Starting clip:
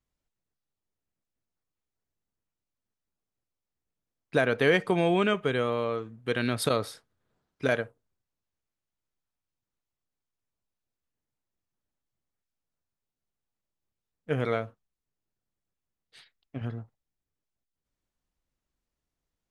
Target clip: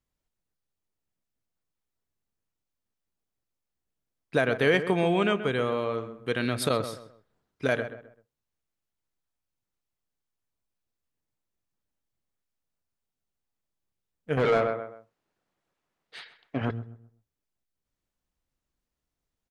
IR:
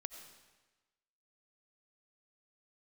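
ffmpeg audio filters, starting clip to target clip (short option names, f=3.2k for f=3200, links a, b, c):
-filter_complex "[0:a]asplit=2[a][b];[b]adelay=130,lowpass=f=1.9k:p=1,volume=-10.5dB,asplit=2[c][d];[d]adelay=130,lowpass=f=1.9k:p=1,volume=0.32,asplit=2[e][f];[f]adelay=130,lowpass=f=1.9k:p=1,volume=0.32[g];[a][c][e][g]amix=inputs=4:normalize=0,asettb=1/sr,asplit=3[h][i][j];[h]atrim=end=14.374[k];[i]atrim=start=14.37:end=16.71,asetpts=PTS-STARTPTS,afade=t=in:d=0.004:c=qsin,afade=t=out:st=2.336:d=0.004:c=qsin,asplit=2[l][m];[m]highpass=f=720:p=1,volume=24dB,asoftclip=type=tanh:threshold=-12.5dB[n];[l][n]amix=inputs=2:normalize=0,lowpass=f=1.3k:p=1,volume=-6dB[o];[j]atrim=start=16.706[p];[k][o]acrossfade=d=0.004:c1=hsin:c2=qsin[q];[q][p]acrossfade=d=0.004:c1=qsin:c2=hsin"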